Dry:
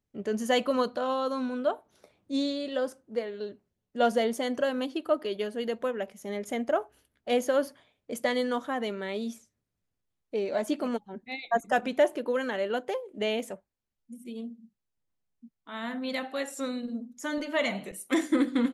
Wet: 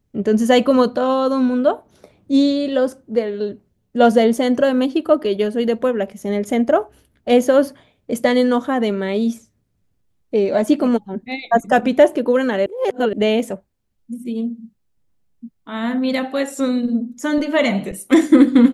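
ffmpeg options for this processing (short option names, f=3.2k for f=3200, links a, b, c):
-filter_complex "[0:a]asplit=3[a][b][c];[a]atrim=end=12.662[d];[b]atrim=start=12.658:end=13.132,asetpts=PTS-STARTPTS,areverse[e];[c]atrim=start=13.128[f];[d][e]acrossfade=d=0.004:c1=hsin:c2=hsin[g];[g][f]acrossfade=d=0.004:c1=hsin:c2=hsin,lowshelf=f=420:g=10,volume=8dB"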